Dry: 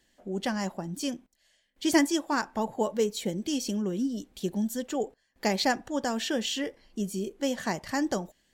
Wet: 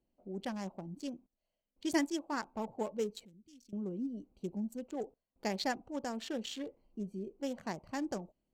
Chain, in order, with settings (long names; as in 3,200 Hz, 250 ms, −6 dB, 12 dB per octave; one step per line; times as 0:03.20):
adaptive Wiener filter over 25 samples
0:03.25–0:03.73: guitar amp tone stack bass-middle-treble 6-0-2
level −8.5 dB